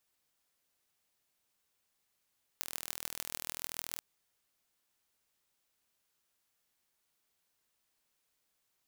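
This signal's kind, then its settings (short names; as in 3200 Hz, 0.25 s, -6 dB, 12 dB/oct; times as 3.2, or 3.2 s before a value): pulse train 40.6/s, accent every 6, -7.5 dBFS 1.39 s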